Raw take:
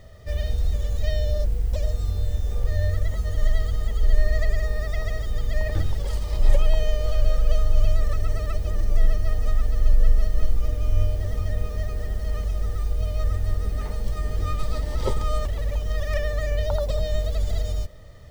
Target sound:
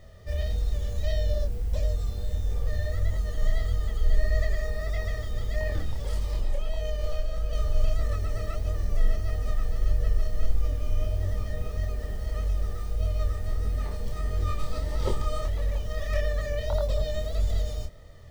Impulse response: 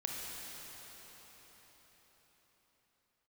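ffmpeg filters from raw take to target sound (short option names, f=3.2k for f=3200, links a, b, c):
-filter_complex "[0:a]asettb=1/sr,asplit=3[a][b][c];[a]atrim=end=5.714[d];[b]atrim=start=5.71:end=7.53,asetpts=PTS-STARTPTS,afade=t=in:d=0.004:c=qsin,afade=t=out:st=1.816:d=0.004:c=qsin,acompressor=threshold=-18dB:ratio=4[e];[c]atrim=start=7.526[f];[d][e]acrossfade=d=0.004:c1=hsin:c2=qsin[g];[g][f]acrossfade=d=0.004:c1=qsin:c2=hsin,flanger=delay=22.5:depth=6.6:speed=1.6"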